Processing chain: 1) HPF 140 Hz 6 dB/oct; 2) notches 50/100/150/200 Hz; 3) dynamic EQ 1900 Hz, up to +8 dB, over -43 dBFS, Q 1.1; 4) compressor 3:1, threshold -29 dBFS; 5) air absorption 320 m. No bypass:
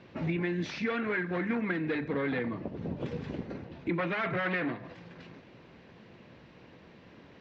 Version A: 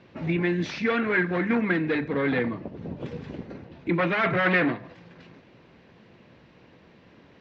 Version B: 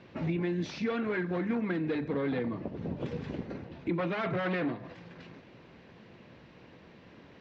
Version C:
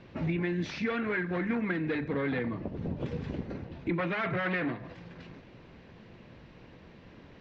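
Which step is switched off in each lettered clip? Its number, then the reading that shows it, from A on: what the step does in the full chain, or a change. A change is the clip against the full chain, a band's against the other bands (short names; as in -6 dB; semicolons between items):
4, loudness change +7.0 LU; 3, 2 kHz band -5.5 dB; 1, 125 Hz band +2.0 dB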